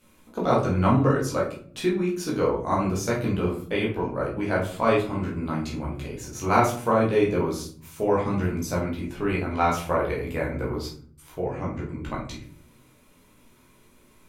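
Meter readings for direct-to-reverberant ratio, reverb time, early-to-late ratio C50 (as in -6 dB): -5.0 dB, 0.50 s, 6.5 dB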